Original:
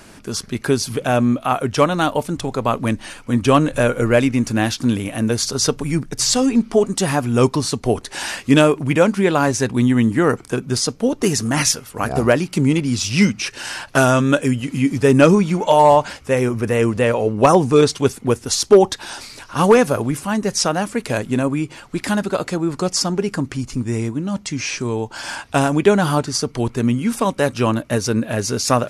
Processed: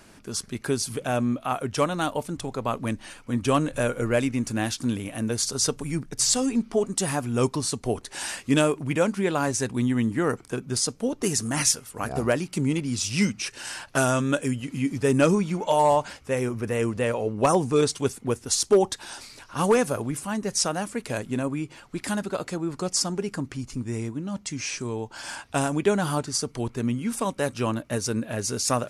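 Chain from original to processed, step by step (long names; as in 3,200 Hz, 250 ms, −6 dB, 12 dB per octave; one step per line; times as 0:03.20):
dynamic equaliser 8,700 Hz, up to +8 dB, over −40 dBFS, Q 1.2
level −8.5 dB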